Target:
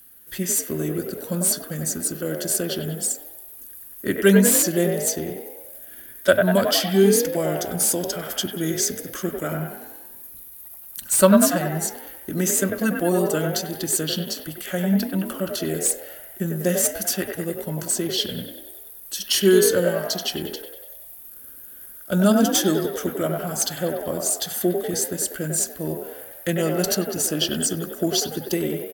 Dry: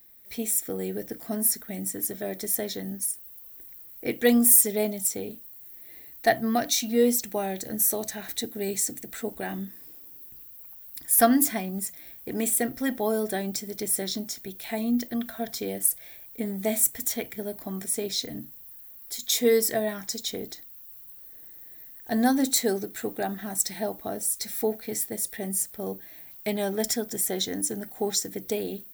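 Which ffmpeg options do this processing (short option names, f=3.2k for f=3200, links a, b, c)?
-filter_complex "[0:a]asetrate=36028,aresample=44100,atempo=1.22405,acrossover=split=220|3000[a][b][c];[b]asplit=9[d][e][f][g][h][i][j][k][l];[e]adelay=96,afreqshift=42,volume=-3.5dB[m];[f]adelay=192,afreqshift=84,volume=-8.4dB[n];[g]adelay=288,afreqshift=126,volume=-13.3dB[o];[h]adelay=384,afreqshift=168,volume=-18.1dB[p];[i]adelay=480,afreqshift=210,volume=-23dB[q];[j]adelay=576,afreqshift=252,volume=-27.9dB[r];[k]adelay=672,afreqshift=294,volume=-32.8dB[s];[l]adelay=768,afreqshift=336,volume=-37.7dB[t];[d][m][n][o][p][q][r][s][t]amix=inputs=9:normalize=0[u];[c]asoftclip=type=hard:threshold=-21.5dB[v];[a][u][v]amix=inputs=3:normalize=0,volume=5dB"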